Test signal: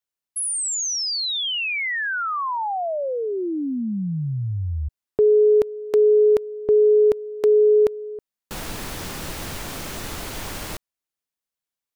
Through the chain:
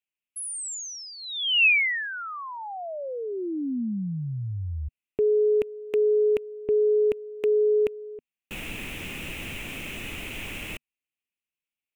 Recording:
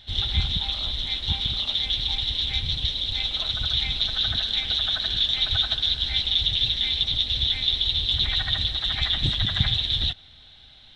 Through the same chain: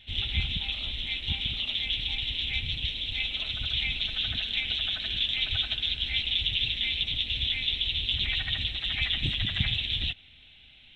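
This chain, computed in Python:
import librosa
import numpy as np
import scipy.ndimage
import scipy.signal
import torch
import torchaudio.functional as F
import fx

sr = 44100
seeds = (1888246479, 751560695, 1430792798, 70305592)

y = fx.curve_eq(x, sr, hz=(150.0, 240.0, 970.0, 1600.0, 2600.0, 4500.0, 7400.0), db=(0, 3, -6, -3, 14, -12, -3))
y = F.gain(torch.from_numpy(y), -5.5).numpy()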